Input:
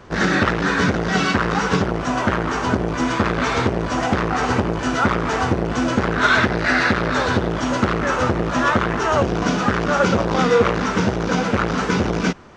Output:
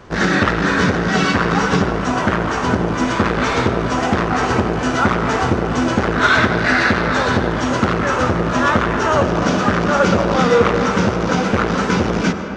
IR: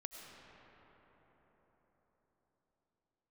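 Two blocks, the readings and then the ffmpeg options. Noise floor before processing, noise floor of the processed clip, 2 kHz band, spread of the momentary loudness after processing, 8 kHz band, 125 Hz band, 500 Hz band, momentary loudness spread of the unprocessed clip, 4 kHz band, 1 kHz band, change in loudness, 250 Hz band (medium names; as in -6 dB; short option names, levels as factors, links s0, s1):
-24 dBFS, -21 dBFS, +2.5 dB, 4 LU, +2.0 dB, +2.5 dB, +3.0 dB, 4 LU, +2.5 dB, +3.0 dB, +2.5 dB, +3.0 dB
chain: -filter_complex "[0:a]asplit=2[s0][s1];[1:a]atrim=start_sample=2205[s2];[s1][s2]afir=irnorm=-1:irlink=0,volume=1.68[s3];[s0][s3]amix=inputs=2:normalize=0,volume=0.668"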